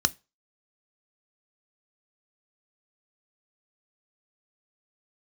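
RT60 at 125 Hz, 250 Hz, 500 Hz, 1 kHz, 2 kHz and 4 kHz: 0.25, 0.25, 0.25, 0.30, 0.25, 0.25 seconds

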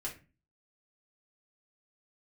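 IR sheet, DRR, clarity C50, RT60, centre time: −4.5 dB, 10.5 dB, 0.30 s, 18 ms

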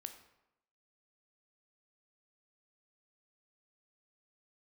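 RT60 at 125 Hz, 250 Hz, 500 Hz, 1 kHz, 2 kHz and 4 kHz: 0.80, 0.85, 0.90, 0.90, 0.75, 0.60 seconds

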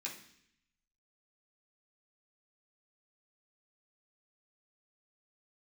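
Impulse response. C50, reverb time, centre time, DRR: 8.0 dB, 0.65 s, 24 ms, −5.5 dB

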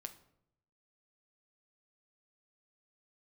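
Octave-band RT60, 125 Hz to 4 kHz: 1.1, 0.90, 0.80, 0.65, 0.55, 0.45 seconds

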